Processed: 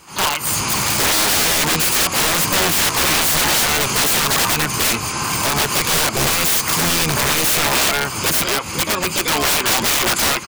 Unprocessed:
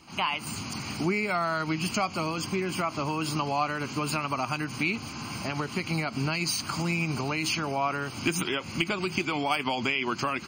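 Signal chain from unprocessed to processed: high shelf 3500 Hz +10.5 dB; harmoniser -12 st -12 dB, +7 st -5 dB; AGC gain up to 11.5 dB; fifteen-band EQ 250 Hz -6 dB, 1000 Hz +7 dB, 4000 Hz -6 dB; wrapped overs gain 15 dB; gain +4 dB

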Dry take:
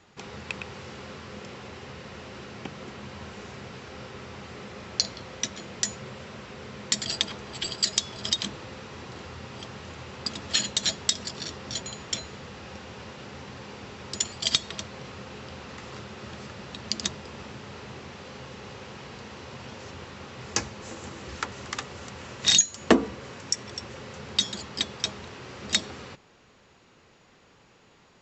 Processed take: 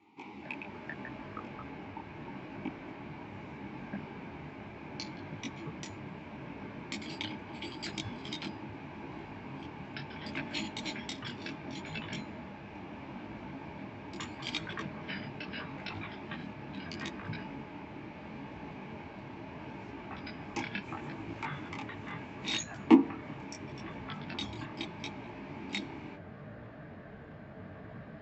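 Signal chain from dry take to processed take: vowel filter u; echoes that change speed 0.178 s, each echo -6 st, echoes 3; detuned doubles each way 26 cents; gain +12 dB

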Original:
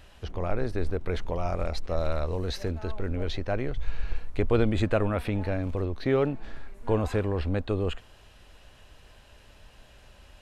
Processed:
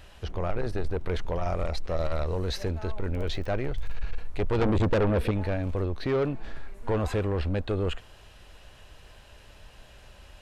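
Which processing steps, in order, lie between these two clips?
3.13–3.95 crackle 16/s -> 72/s -37 dBFS; 4.61–5.31 resonant low shelf 600 Hz +7 dB, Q 3; soft clip -22.5 dBFS, distortion -6 dB; bell 250 Hz -3.5 dB 0.39 oct; gain +2.5 dB

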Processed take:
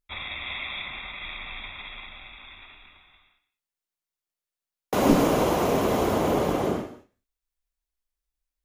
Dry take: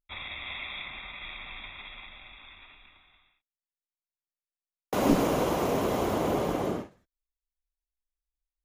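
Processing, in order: non-linear reverb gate 0.22 s flat, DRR 11.5 dB; gain +4 dB

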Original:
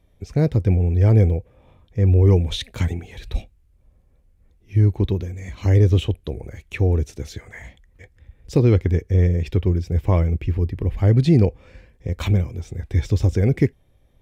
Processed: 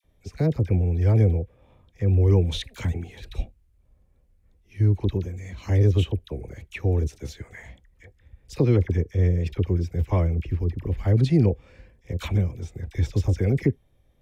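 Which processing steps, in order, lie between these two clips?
dispersion lows, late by 44 ms, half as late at 1100 Hz; gain -4 dB

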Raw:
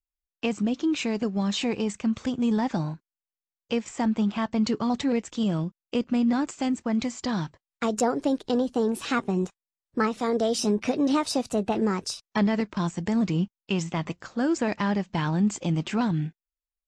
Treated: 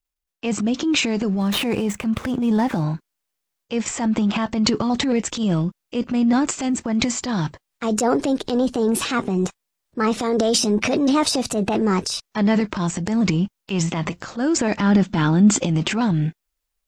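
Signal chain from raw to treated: 1.29–2.83 median filter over 9 samples; 14.8–15.6 small resonant body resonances 260/1400/3500 Hz, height 10 dB, ringing for 25 ms; transient shaper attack -6 dB, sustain +9 dB; gain +5.5 dB

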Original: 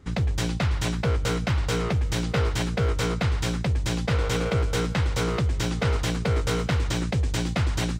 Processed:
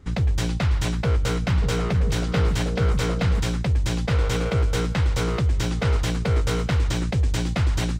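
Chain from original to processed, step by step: low shelf 71 Hz +7.5 dB; 1.3–3.4 delay with a stepping band-pass 0.159 s, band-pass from 200 Hz, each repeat 1.4 oct, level -2 dB

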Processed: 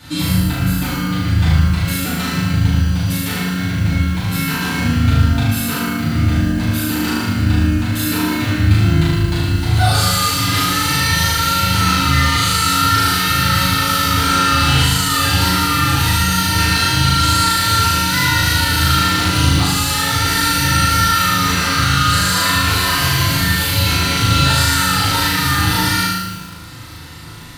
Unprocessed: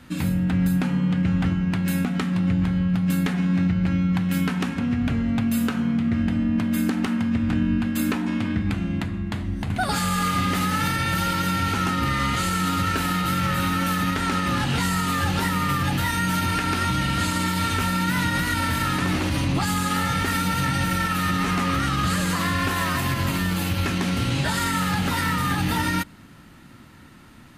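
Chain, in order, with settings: high shelf 3700 Hz +9.5 dB; limiter -19 dBFS, peak gain reduction 10.5 dB; fifteen-band EQ 100 Hz +7 dB, 250 Hz -5 dB, 4000 Hz +7 dB; on a send: flutter echo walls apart 6.5 m, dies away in 1 s; on the sum: FDN reverb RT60 0.68 s, low-frequency decay 1.1×, high-frequency decay 0.55×, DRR -8 dB; lo-fi delay 0.113 s, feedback 35%, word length 5-bit, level -7 dB; gain -1 dB

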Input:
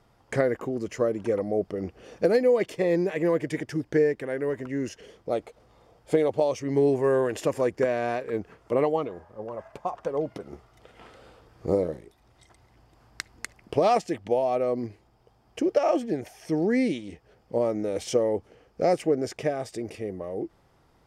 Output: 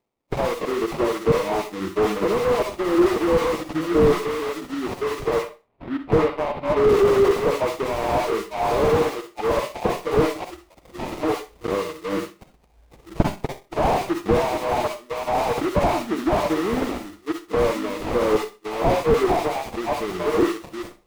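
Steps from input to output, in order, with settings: reverse delay 0.597 s, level -9 dB; recorder AGC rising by 16 dB/s; spectral noise reduction 29 dB; three-band isolator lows -21 dB, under 280 Hz, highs -12 dB, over 6300 Hz; in parallel at +1 dB: compressor, threshold -34 dBFS, peak gain reduction 22 dB; on the sum: phaser 0.49 Hz, delay 2.9 ms, feedback 66%; sample-rate reducer 1600 Hz, jitter 20%; 5.35–6.84 air absorption 420 m; on a send at -8 dB: reverb RT60 0.30 s, pre-delay 44 ms; on the sum: slew limiter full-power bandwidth 70 Hz; gain +3.5 dB

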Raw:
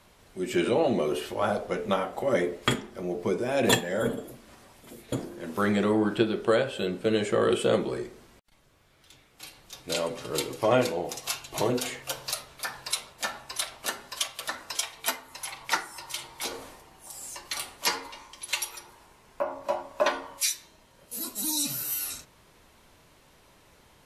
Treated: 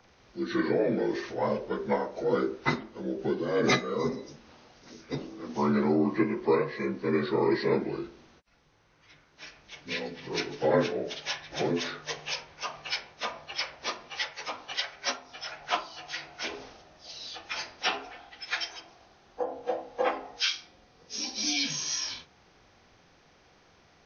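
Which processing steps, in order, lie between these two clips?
inharmonic rescaling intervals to 81%; 9.86–10.27 spectral gain 280–1700 Hz -7 dB; 20.49–21.53 flutter echo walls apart 8 m, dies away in 0.3 s

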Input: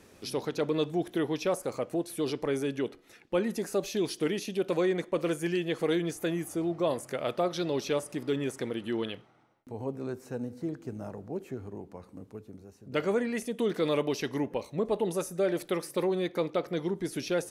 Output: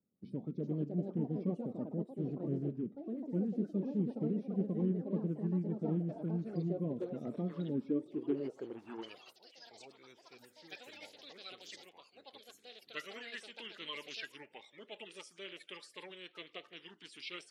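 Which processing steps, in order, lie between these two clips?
bin magnitudes rounded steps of 30 dB; gate with hold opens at -43 dBFS; band-pass sweep 210 Hz -> 3100 Hz, 7.58–9.97; echoes that change speed 0.434 s, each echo +4 st, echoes 2, each echo -6 dB; formant shift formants -2 st; gain +1 dB

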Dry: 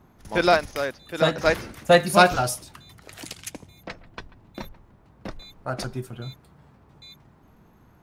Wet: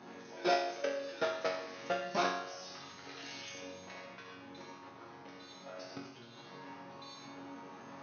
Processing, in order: compressor 16:1, threshold -24 dBFS, peak gain reduction 15.5 dB; power-law curve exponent 0.5; brick-wall FIR low-pass 6500 Hz; reverb RT60 0.45 s, pre-delay 67 ms, DRR 2 dB; level quantiser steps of 20 dB; Bessel high-pass 260 Hz, order 4; resonator bank F#2 major, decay 0.71 s; gain +11.5 dB

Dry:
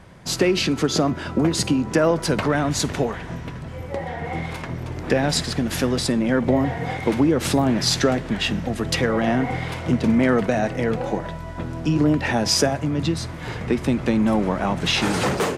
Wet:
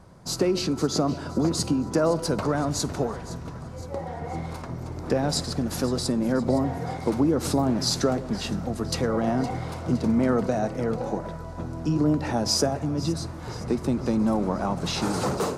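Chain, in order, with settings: band shelf 2400 Hz -9.5 dB 1.3 oct; on a send: split-band echo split 770 Hz, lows 0.133 s, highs 0.514 s, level -16 dB; on the sum: gain -4 dB

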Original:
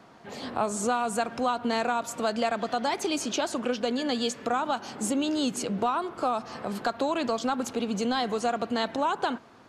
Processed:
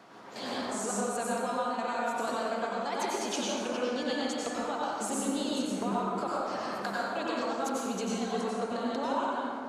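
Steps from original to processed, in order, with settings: HPF 300 Hz 6 dB/oct; compressor, threshold -34 dBFS, peak gain reduction 11.5 dB; chopper 2.8 Hz, depth 65%, duty 55%; plate-style reverb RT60 2.2 s, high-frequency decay 0.45×, pre-delay 80 ms, DRR -6.5 dB

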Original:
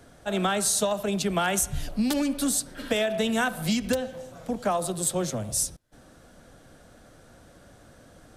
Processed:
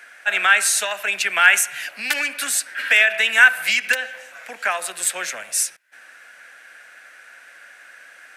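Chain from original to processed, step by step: HPF 1000 Hz 12 dB/oct; band shelf 2000 Hz +14.5 dB 1.1 oct; gain +5.5 dB

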